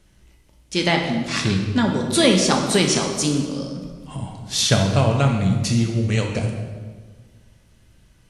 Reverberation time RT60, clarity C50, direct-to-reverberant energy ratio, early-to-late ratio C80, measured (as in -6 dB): 1.5 s, 4.5 dB, 1.5 dB, 6.5 dB